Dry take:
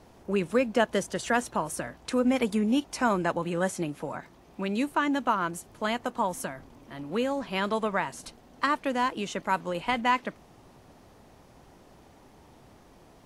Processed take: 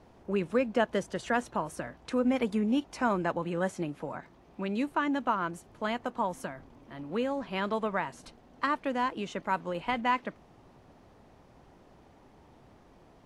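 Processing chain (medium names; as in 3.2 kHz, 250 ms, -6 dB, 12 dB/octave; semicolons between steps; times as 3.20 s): low-pass 3.1 kHz 6 dB/octave; trim -2.5 dB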